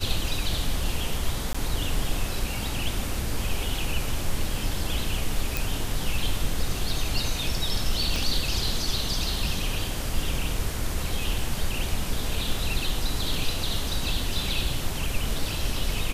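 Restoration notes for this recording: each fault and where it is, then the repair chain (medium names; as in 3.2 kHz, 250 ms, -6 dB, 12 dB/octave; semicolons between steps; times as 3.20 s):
1.53–1.54 s: dropout 15 ms
5.57 s: pop
8.16 s: pop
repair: de-click; interpolate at 1.53 s, 15 ms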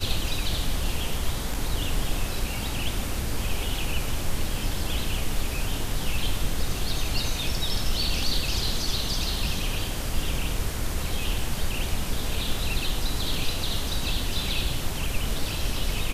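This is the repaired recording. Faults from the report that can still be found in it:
8.16 s: pop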